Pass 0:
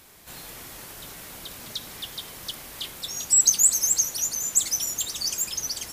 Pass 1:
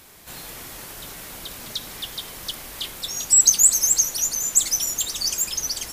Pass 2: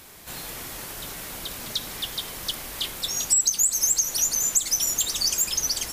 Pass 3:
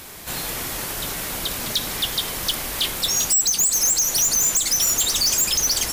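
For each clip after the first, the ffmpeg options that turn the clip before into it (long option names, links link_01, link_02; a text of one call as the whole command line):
ffmpeg -i in.wav -af "asubboost=boost=2.5:cutoff=53,volume=3.5dB" out.wav
ffmpeg -i in.wav -af "acompressor=threshold=-19dB:ratio=10,volume=1.5dB" out.wav
ffmpeg -i in.wav -af "asoftclip=type=hard:threshold=-24dB,volume=8dB" out.wav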